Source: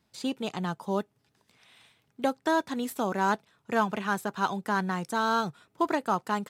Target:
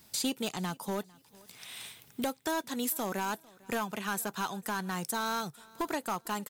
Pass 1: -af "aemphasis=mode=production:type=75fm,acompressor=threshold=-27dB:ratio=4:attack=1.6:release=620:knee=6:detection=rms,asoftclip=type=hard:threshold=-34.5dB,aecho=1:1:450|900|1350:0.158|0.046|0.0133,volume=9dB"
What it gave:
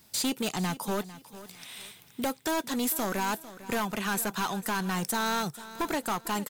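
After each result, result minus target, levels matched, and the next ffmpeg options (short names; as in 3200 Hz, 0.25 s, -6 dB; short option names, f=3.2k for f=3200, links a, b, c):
compressor: peak gain reduction -6.5 dB; echo-to-direct +8.5 dB
-af "aemphasis=mode=production:type=75fm,acompressor=threshold=-35.5dB:ratio=4:attack=1.6:release=620:knee=6:detection=rms,asoftclip=type=hard:threshold=-34.5dB,aecho=1:1:450|900|1350:0.158|0.046|0.0133,volume=9dB"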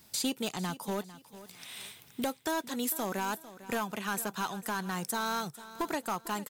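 echo-to-direct +8.5 dB
-af "aemphasis=mode=production:type=75fm,acompressor=threshold=-35.5dB:ratio=4:attack=1.6:release=620:knee=6:detection=rms,asoftclip=type=hard:threshold=-34.5dB,aecho=1:1:450|900:0.0596|0.0173,volume=9dB"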